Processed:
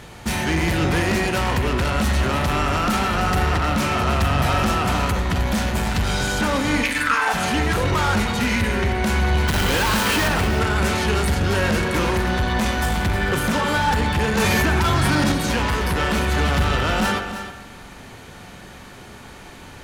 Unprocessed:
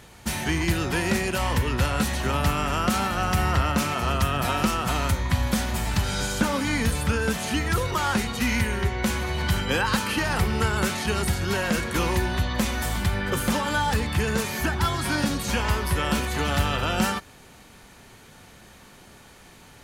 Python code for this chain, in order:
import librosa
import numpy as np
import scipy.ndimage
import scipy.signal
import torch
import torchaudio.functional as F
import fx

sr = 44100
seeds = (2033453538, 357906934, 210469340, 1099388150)

y = fx.high_shelf(x, sr, hz=5900.0, db=-7.0)
y = fx.quant_companded(y, sr, bits=2, at=(9.47, 10.27), fade=0.02)
y = 10.0 ** (-26.0 / 20.0) * np.tanh(y / 10.0 ** (-26.0 / 20.0))
y = fx.highpass_res(y, sr, hz=fx.line((6.82, 2600.0), (7.33, 720.0)), q=5.0, at=(6.82, 7.33), fade=0.02)
y = y + 10.0 ** (-11.0 / 20.0) * np.pad(y, (int(312 * sr / 1000.0), 0))[:len(y)]
y = fx.rev_spring(y, sr, rt60_s=1.2, pass_ms=(43,), chirp_ms=35, drr_db=7.5)
y = fx.env_flatten(y, sr, amount_pct=100, at=(14.37, 15.32))
y = y * 10.0 ** (8.5 / 20.0)